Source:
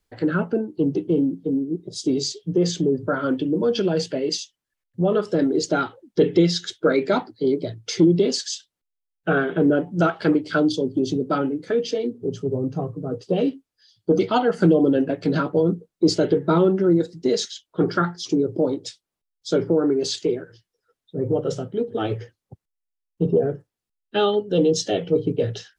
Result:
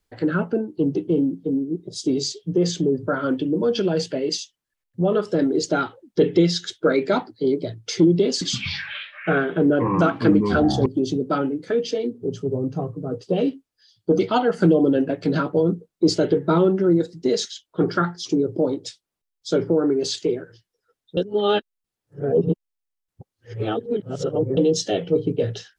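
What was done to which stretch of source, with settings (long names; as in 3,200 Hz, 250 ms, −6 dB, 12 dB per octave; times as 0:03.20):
0:08.29–0:10.86: delay with pitch and tempo change per echo 120 ms, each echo −6 semitones, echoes 3
0:21.17–0:24.57: reverse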